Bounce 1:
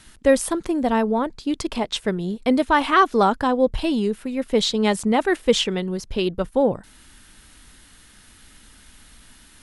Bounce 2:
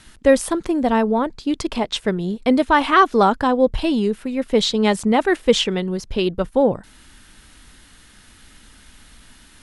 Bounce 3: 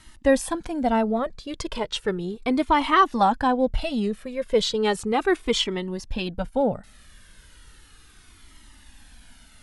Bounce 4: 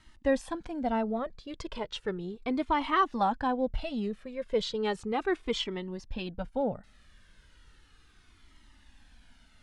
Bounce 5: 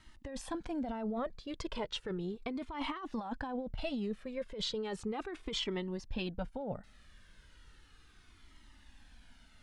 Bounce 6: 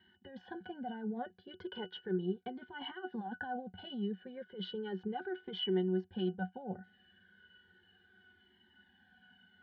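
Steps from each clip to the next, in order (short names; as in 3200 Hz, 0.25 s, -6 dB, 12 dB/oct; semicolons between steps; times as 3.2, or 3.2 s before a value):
high shelf 10000 Hz -7 dB; gain +2.5 dB
cascading flanger falling 0.35 Hz
air absorption 77 m; gain -7.5 dB
negative-ratio compressor -33 dBFS, ratio -1; gain -4 dB
speaker cabinet 290–4300 Hz, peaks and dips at 400 Hz -5 dB, 760 Hz -4 dB, 1100 Hz -6 dB, 1700 Hz +6 dB; octave resonator F#, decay 0.11 s; gain +13.5 dB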